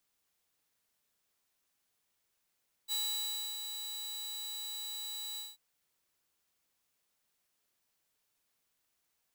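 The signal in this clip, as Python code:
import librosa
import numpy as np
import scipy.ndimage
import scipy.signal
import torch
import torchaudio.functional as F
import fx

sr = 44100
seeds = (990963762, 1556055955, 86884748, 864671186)

y = fx.adsr_tone(sr, wave='saw', hz=3930.0, attack_ms=41.0, decay_ms=643.0, sustain_db=-7.5, held_s=2.5, release_ms=189.0, level_db=-29.0)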